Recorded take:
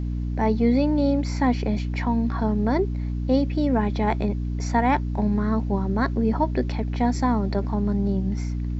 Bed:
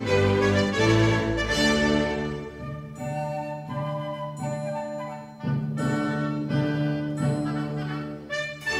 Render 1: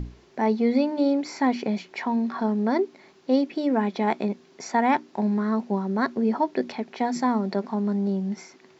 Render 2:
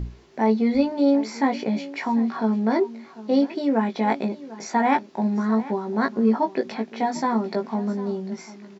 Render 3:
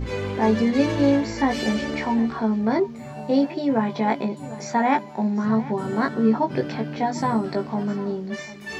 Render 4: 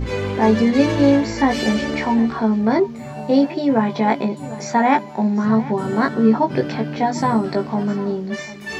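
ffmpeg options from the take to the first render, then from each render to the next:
-af "bandreject=f=60:t=h:w=6,bandreject=f=120:t=h:w=6,bandreject=f=180:t=h:w=6,bandreject=f=240:t=h:w=6,bandreject=f=300:t=h:w=6"
-filter_complex "[0:a]asplit=2[a][b];[b]adelay=18,volume=-4.5dB[c];[a][c]amix=inputs=2:normalize=0,aecho=1:1:747:0.133"
-filter_complex "[1:a]volume=-7dB[a];[0:a][a]amix=inputs=2:normalize=0"
-af "volume=4.5dB"

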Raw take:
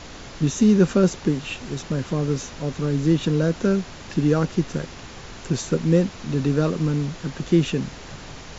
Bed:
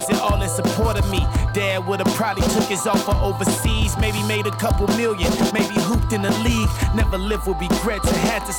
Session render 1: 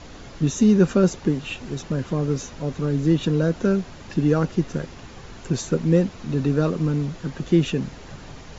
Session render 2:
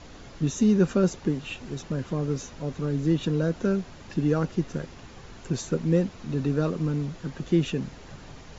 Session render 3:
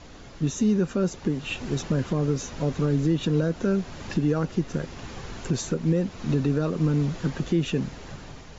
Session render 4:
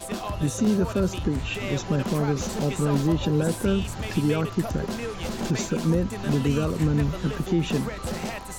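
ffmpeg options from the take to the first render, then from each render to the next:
-af "afftdn=nr=6:nf=-40"
-af "volume=-4.5dB"
-af "dynaudnorm=f=460:g=5:m=8.5dB,alimiter=limit=-14.5dB:level=0:latency=1:release=339"
-filter_complex "[1:a]volume=-12.5dB[a];[0:a][a]amix=inputs=2:normalize=0"

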